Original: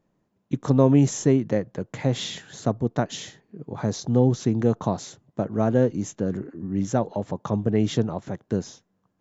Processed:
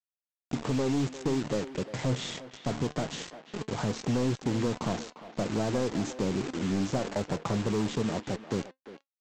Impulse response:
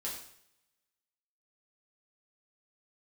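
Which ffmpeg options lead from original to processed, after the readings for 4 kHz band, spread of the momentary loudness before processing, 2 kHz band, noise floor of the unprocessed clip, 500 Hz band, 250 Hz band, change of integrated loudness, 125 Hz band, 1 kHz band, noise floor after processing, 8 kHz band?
-2.0 dB, 13 LU, 0.0 dB, -73 dBFS, -7.0 dB, -6.5 dB, -7.0 dB, -8.5 dB, -4.5 dB, under -85 dBFS, n/a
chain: -filter_complex "[0:a]lowpass=f=2.1k:p=1,bandreject=f=74.53:t=h:w=4,bandreject=f=149.06:t=h:w=4,bandreject=f=223.59:t=h:w=4,bandreject=f=298.12:t=h:w=4,adynamicequalizer=threshold=0.0355:dfrequency=350:dqfactor=1.1:tfrequency=350:tqfactor=1.1:attack=5:release=100:ratio=0.375:range=2:mode=boostabove:tftype=bell,dynaudnorm=f=250:g=13:m=16dB,asplit=2[a][b];[b]alimiter=limit=-11dB:level=0:latency=1:release=40,volume=-2.5dB[c];[a][c]amix=inputs=2:normalize=0,acompressor=threshold=-16dB:ratio=3,aresample=16000,acrusher=bits=4:mix=0:aa=0.000001,aresample=44100,asoftclip=type=hard:threshold=-14.5dB,flanger=delay=3.6:depth=4.2:regen=81:speed=0.23:shape=sinusoidal,asplit=2[d][e];[e]adelay=350,highpass=300,lowpass=3.4k,asoftclip=type=hard:threshold=-24.5dB,volume=-11dB[f];[d][f]amix=inputs=2:normalize=0,volume=-3.5dB"

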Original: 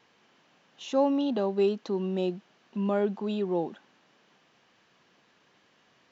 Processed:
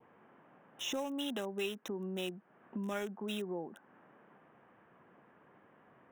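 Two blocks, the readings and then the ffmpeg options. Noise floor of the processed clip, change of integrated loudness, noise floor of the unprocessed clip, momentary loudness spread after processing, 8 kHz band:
-65 dBFS, -10.5 dB, -65 dBFS, 9 LU, n/a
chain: -filter_complex "[0:a]highpass=49,adynamicequalizer=threshold=0.00447:dfrequency=1600:dqfactor=1.7:tfrequency=1600:tqfactor=1.7:attack=5:release=100:ratio=0.375:range=2:mode=boostabove:tftype=bell,acrossover=split=1800[a][b];[a]acompressor=threshold=-44dB:ratio=4[c];[b]aeval=exprs='val(0)*gte(abs(val(0)),0.00422)':c=same[d];[c][d]amix=inputs=2:normalize=0,asuperstop=centerf=4500:order=8:qfactor=2.8,volume=4dB"

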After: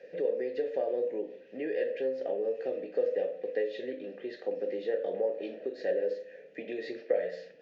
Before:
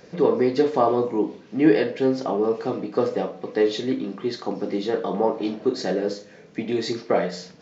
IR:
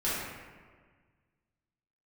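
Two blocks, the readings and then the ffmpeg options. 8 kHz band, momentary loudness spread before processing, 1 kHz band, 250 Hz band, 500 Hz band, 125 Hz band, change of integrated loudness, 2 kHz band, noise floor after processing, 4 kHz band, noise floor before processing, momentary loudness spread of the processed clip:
n/a, 9 LU, -19.5 dB, -18.5 dB, -8.0 dB, under -20 dB, -10.0 dB, -10.0 dB, -53 dBFS, -17.5 dB, -48 dBFS, 8 LU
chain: -filter_complex "[0:a]acrossover=split=100|5600[a][b][c];[a]acompressor=threshold=-59dB:ratio=4[d];[b]acompressor=threshold=-24dB:ratio=4[e];[c]acompressor=threshold=-55dB:ratio=4[f];[d][e][f]amix=inputs=3:normalize=0,asplit=3[g][h][i];[g]bandpass=f=530:t=q:w=8,volume=0dB[j];[h]bandpass=f=1.84k:t=q:w=8,volume=-6dB[k];[i]bandpass=f=2.48k:t=q:w=8,volume=-9dB[l];[j][k][l]amix=inputs=3:normalize=0,volume=5dB"

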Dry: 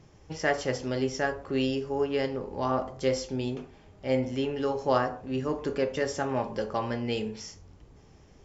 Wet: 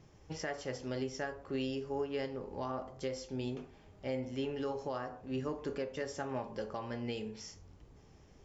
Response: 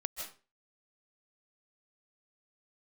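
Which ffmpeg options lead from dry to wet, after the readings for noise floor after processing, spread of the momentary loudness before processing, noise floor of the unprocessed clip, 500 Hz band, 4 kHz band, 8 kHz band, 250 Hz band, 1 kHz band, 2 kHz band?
-60 dBFS, 7 LU, -55 dBFS, -9.5 dB, -9.0 dB, n/a, -8.5 dB, -11.0 dB, -11.0 dB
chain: -af "alimiter=limit=-22.5dB:level=0:latency=1:release=478,volume=-4.5dB"

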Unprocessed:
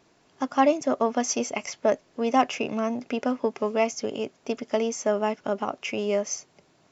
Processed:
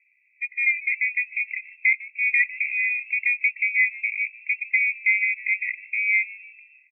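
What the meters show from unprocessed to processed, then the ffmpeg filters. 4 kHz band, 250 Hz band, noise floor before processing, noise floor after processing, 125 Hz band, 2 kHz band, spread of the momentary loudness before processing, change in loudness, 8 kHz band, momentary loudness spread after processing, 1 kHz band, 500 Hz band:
under -40 dB, under -40 dB, -63 dBFS, -64 dBFS, under -40 dB, +18.0 dB, 9 LU, +4.5 dB, n/a, 7 LU, under -40 dB, under -40 dB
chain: -filter_complex "[0:a]asplit=5[a][b][c][d][e];[b]adelay=150,afreqshift=-110,volume=-20dB[f];[c]adelay=300,afreqshift=-220,volume=-25dB[g];[d]adelay=450,afreqshift=-330,volume=-30.1dB[h];[e]adelay=600,afreqshift=-440,volume=-35.1dB[i];[a][f][g][h][i]amix=inputs=5:normalize=0,dynaudnorm=f=570:g=5:m=5dB,lowpass=f=2.3k:t=q:w=0.5098,lowpass=f=2.3k:t=q:w=0.6013,lowpass=f=2.3k:t=q:w=0.9,lowpass=f=2.3k:t=q:w=2.563,afreqshift=-2700,afftfilt=real='re*eq(mod(floor(b*sr/1024/1900),2),1)':imag='im*eq(mod(floor(b*sr/1024/1900),2),1)':win_size=1024:overlap=0.75,volume=-1dB"

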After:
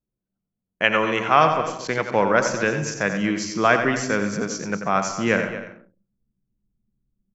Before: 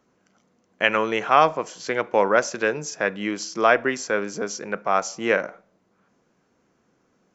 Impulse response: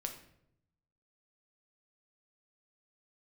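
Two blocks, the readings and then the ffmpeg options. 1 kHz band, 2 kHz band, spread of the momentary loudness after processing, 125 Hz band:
+1.0 dB, +1.5 dB, 9 LU, +10.0 dB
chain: -filter_complex "[0:a]asubboost=boost=5.5:cutoff=200,asplit=2[a][b];[1:a]atrim=start_sample=2205,adelay=88[c];[b][c]afir=irnorm=-1:irlink=0,volume=-6dB[d];[a][d]amix=inputs=2:normalize=0,anlmdn=1,aecho=1:1:232:0.211,volume=1dB"

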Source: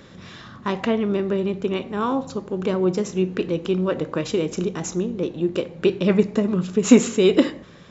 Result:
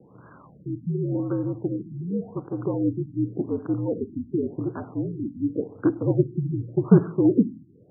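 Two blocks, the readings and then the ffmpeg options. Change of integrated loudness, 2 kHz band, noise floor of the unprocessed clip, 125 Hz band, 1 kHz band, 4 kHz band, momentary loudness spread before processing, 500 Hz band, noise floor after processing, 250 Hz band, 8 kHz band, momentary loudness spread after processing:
-3.5 dB, under -15 dB, -45 dBFS, +2.5 dB, -11.0 dB, under -40 dB, 10 LU, -7.0 dB, -52 dBFS, -3.0 dB, n/a, 11 LU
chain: -filter_complex "[0:a]aeval=exprs='val(0)+0.00282*(sin(2*PI*50*n/s)+sin(2*PI*2*50*n/s)/2+sin(2*PI*3*50*n/s)/3+sin(2*PI*4*50*n/s)/4+sin(2*PI*5*50*n/s)/5)':c=same,asplit=2[a][b];[b]acrusher=bits=3:dc=4:mix=0:aa=0.000001,volume=-10dB[c];[a][c]amix=inputs=2:normalize=0,highpass=f=200:t=q:w=0.5412,highpass=f=200:t=q:w=1.307,lowpass=f=2.5k:t=q:w=0.5176,lowpass=f=2.5k:t=q:w=0.7071,lowpass=f=2.5k:t=q:w=1.932,afreqshift=-64,afftfilt=real='re*lt(b*sr/1024,330*pow(1700/330,0.5+0.5*sin(2*PI*0.89*pts/sr)))':imag='im*lt(b*sr/1024,330*pow(1700/330,0.5+0.5*sin(2*PI*0.89*pts/sr)))':win_size=1024:overlap=0.75,volume=-4dB"

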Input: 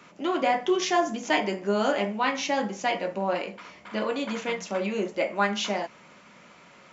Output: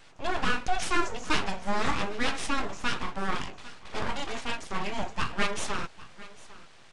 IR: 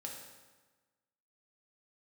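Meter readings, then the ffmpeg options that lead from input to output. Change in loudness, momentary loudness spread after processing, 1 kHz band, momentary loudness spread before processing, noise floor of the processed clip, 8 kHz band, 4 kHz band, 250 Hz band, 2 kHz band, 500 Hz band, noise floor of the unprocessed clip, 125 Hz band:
-4.0 dB, 16 LU, -3.5 dB, 7 LU, -52 dBFS, n/a, -1.5 dB, -6.0 dB, -1.0 dB, -10.0 dB, -53 dBFS, +1.0 dB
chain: -filter_complex "[0:a]acrossover=split=130[a][b];[b]aeval=exprs='abs(val(0))':c=same[c];[a][c]amix=inputs=2:normalize=0,aecho=1:1:801:0.112,aresample=22050,aresample=44100"

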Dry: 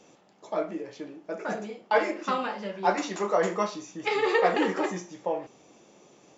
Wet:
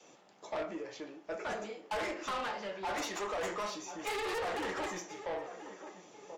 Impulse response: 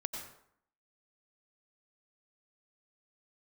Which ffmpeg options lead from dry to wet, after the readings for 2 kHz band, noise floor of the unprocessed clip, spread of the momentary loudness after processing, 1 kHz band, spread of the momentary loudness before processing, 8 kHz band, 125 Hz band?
-8.0 dB, -58 dBFS, 12 LU, -9.0 dB, 12 LU, n/a, -11.5 dB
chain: -filter_complex "[0:a]acrossover=split=560|1400[a][b][c];[b]crystalizer=i=2.5:c=0[d];[c]aeval=exprs='0.0282*(abs(mod(val(0)/0.0282+3,4)-2)-1)':c=same[e];[a][d][e]amix=inputs=3:normalize=0,alimiter=limit=-19dB:level=0:latency=1:release=23,lowshelf=f=260:g=-9.5,asplit=2[f][g];[g]adelay=1034,lowpass=f=1.6k:p=1,volume=-16dB,asplit=2[h][i];[i]adelay=1034,lowpass=f=1.6k:p=1,volume=0.4,asplit=2[j][k];[k]adelay=1034,lowpass=f=1.6k:p=1,volume=0.4,asplit=2[l][m];[m]adelay=1034,lowpass=f=1.6k:p=1,volume=0.4[n];[f][h][j][l][n]amix=inputs=5:normalize=0,asoftclip=type=tanh:threshold=-32dB,adynamicequalizer=threshold=0.00178:dfrequency=180:dqfactor=0.79:tfrequency=180:tqfactor=0.79:attack=5:release=100:ratio=0.375:range=2.5:mode=cutabove:tftype=bell" -ar 48000 -c:a aac -b:a 64k

